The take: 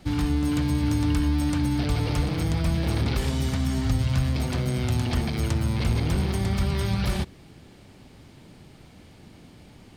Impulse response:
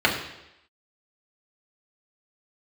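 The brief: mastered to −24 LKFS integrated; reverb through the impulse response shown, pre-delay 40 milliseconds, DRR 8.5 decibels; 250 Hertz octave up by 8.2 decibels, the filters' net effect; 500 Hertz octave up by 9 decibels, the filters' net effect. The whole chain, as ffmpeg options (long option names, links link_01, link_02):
-filter_complex "[0:a]equalizer=frequency=250:width_type=o:gain=7.5,equalizer=frequency=500:width_type=o:gain=9,asplit=2[link_01][link_02];[1:a]atrim=start_sample=2205,adelay=40[link_03];[link_02][link_03]afir=irnorm=-1:irlink=0,volume=-27dB[link_04];[link_01][link_04]amix=inputs=2:normalize=0,volume=-3.5dB"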